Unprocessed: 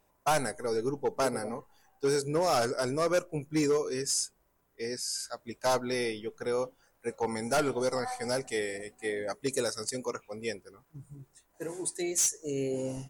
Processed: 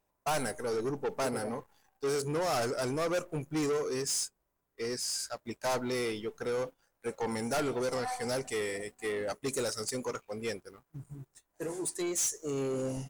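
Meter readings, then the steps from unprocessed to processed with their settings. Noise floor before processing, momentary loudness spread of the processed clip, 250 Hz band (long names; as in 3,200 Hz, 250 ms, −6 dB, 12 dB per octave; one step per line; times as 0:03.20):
−71 dBFS, 9 LU, −1.5 dB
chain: leveller curve on the samples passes 2
level −5.5 dB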